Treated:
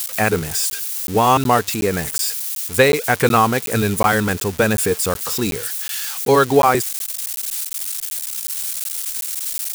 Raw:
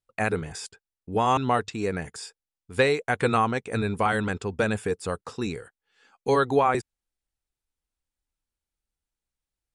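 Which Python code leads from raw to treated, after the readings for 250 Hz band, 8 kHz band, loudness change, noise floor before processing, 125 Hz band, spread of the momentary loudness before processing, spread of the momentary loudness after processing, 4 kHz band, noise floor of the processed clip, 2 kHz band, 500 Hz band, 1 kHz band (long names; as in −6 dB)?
+8.0 dB, +21.5 dB, +7.5 dB, below −85 dBFS, +8.0 dB, 14 LU, 8 LU, +12.5 dB, −30 dBFS, +8.5 dB, +8.0 dB, +8.0 dB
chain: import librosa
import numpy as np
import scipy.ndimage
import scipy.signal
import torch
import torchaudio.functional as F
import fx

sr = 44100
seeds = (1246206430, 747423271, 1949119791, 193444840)

y = x + 0.5 * 10.0 ** (-23.5 / 20.0) * np.diff(np.sign(x), prepend=np.sign(x[:1]))
y = fx.buffer_crackle(y, sr, first_s=0.7, period_s=0.37, block=512, kind='zero')
y = y * 10.0 ** (8.0 / 20.0)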